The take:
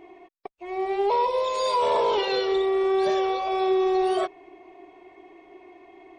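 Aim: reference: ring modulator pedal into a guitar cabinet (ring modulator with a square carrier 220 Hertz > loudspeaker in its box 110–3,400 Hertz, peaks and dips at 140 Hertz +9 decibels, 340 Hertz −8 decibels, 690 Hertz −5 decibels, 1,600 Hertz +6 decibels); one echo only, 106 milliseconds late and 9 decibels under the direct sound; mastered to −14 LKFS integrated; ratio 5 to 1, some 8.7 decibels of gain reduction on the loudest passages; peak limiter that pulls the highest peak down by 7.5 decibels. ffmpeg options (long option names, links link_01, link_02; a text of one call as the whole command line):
ffmpeg -i in.wav -af "acompressor=threshold=-29dB:ratio=5,alimiter=level_in=5dB:limit=-24dB:level=0:latency=1,volume=-5dB,aecho=1:1:106:0.355,aeval=exprs='val(0)*sgn(sin(2*PI*220*n/s))':channel_layout=same,highpass=110,equalizer=frequency=140:width_type=q:width=4:gain=9,equalizer=frequency=340:width_type=q:width=4:gain=-8,equalizer=frequency=690:width_type=q:width=4:gain=-5,equalizer=frequency=1600:width_type=q:width=4:gain=6,lowpass=frequency=3400:width=0.5412,lowpass=frequency=3400:width=1.3066,volume=21.5dB" out.wav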